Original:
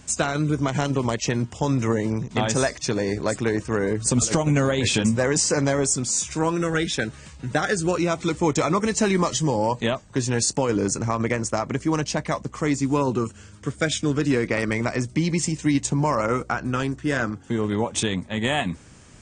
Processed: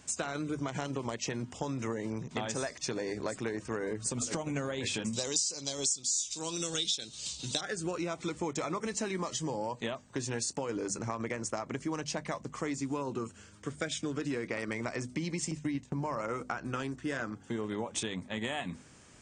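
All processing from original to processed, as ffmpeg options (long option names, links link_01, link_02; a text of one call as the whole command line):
ffmpeg -i in.wav -filter_complex "[0:a]asettb=1/sr,asplit=3[link_01][link_02][link_03];[link_01]atrim=end=5.134[link_04];[link_02]atrim=start=5.13:end=7.61,asetpts=PTS-STARTPTS,afade=type=in:duration=0.004:curve=qsin,afade=type=out:start_time=2.476:duration=0.004:curve=qsin,lowpass=frequency=7600:width_type=q:width=1.6,highshelf=frequency=2600:width_type=q:width=3:gain=13[link_05];[link_03]atrim=start=7.606[link_06];[link_04][link_05]acrossfade=duration=0.004:curve1=hsin:curve2=qsin[link_07];[link_07][link_06]acrossfade=duration=0.004:curve1=qsin:curve2=hsin,asettb=1/sr,asplit=3[link_08][link_09][link_10];[link_08]atrim=end=15.514[link_11];[link_09]atrim=start=15.51:end=16.17,asetpts=PTS-STARTPTS,afade=type=in:duration=0.004:curve=qsin,afade=type=out:start_time=0.656:duration=0.004:curve=qsin,acrossover=split=3000[link_12][link_13];[link_13]acompressor=threshold=-40dB:ratio=4:attack=1:release=60[link_14];[link_12][link_14]amix=inputs=2:normalize=0,agate=range=-13dB:threshold=-35dB:ratio=16:release=100:detection=peak,equalizer=frequency=76:width_type=o:width=2.5:gain=5.5[link_15];[link_10]atrim=start=16.166[link_16];[link_11][link_15]acrossfade=duration=0.004:curve1=hsin:curve2=qsin[link_17];[link_17][link_16]acrossfade=duration=0.004:curve1=qsin:curve2=hsin,lowshelf=frequency=120:gain=-9,bandreject=frequency=50:width_type=h:width=6,bandreject=frequency=100:width_type=h:width=6,bandreject=frequency=150:width_type=h:width=6,bandreject=frequency=200:width_type=h:width=6,bandreject=frequency=250:width_type=h:width=6,acompressor=threshold=-25dB:ratio=6,volume=-6dB" out.wav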